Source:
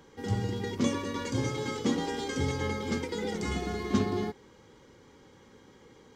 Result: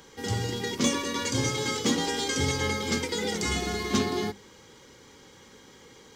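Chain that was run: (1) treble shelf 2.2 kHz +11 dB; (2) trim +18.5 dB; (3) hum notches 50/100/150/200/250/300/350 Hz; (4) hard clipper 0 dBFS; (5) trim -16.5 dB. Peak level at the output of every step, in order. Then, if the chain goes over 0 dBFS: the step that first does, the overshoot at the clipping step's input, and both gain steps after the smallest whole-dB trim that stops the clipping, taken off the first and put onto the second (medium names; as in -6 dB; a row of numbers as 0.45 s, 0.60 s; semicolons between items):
-13.0 dBFS, +5.5 dBFS, +5.5 dBFS, 0.0 dBFS, -16.5 dBFS; step 2, 5.5 dB; step 2 +12.5 dB, step 5 -10.5 dB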